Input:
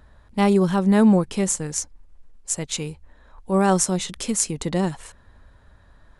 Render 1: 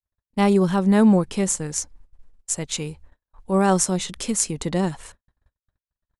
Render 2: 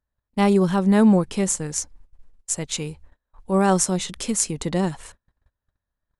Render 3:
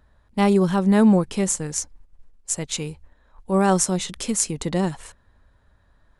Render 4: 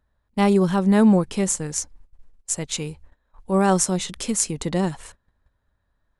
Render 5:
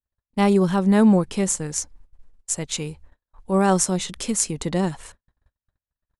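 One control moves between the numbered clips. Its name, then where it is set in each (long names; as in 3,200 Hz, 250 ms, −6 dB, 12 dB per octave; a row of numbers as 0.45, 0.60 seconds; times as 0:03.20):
noise gate, range: −58, −32, −7, −19, −46 decibels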